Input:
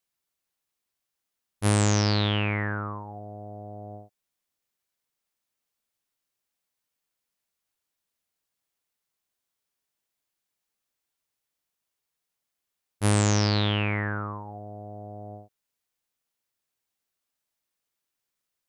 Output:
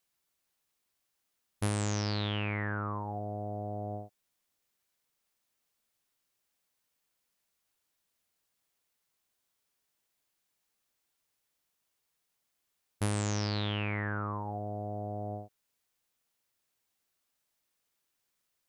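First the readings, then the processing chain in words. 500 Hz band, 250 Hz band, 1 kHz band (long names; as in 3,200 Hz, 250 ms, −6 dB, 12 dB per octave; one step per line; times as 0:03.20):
−6.0 dB, −7.5 dB, −5.0 dB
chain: downward compressor 6 to 1, threshold −33 dBFS, peak gain reduction 13.5 dB
level +3 dB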